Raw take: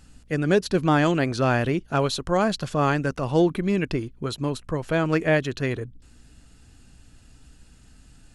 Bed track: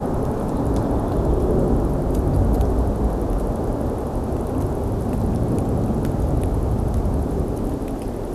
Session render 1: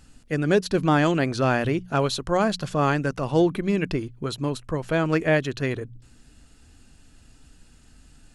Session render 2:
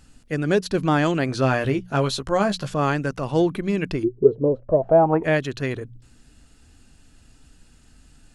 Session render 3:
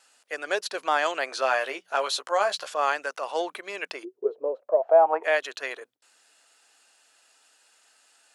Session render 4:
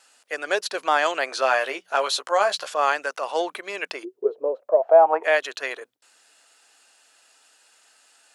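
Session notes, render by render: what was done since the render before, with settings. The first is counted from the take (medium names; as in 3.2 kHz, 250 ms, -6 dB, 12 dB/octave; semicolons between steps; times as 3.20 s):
de-hum 60 Hz, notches 3
1.27–2.74 s: doubling 15 ms -7 dB; 4.03–5.23 s: resonant low-pass 350 Hz -> 920 Hz, resonance Q 13
high-pass 570 Hz 24 dB/octave; gate with hold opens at -55 dBFS
trim +3.5 dB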